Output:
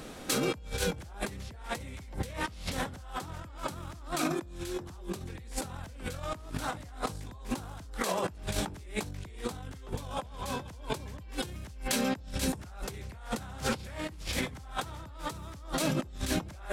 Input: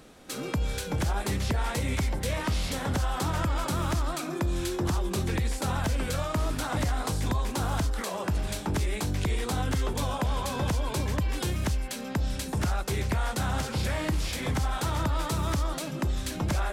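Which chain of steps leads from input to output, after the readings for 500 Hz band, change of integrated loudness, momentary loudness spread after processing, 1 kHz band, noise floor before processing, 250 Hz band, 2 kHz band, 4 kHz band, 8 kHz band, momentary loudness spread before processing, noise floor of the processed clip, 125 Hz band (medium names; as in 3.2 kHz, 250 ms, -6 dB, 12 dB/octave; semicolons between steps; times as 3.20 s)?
-3.0 dB, -6.0 dB, 9 LU, -5.5 dB, -36 dBFS, -4.5 dB, -4.0 dB, -3.0 dB, -3.0 dB, 2 LU, -46 dBFS, -11.5 dB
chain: compressor with a negative ratio -35 dBFS, ratio -0.5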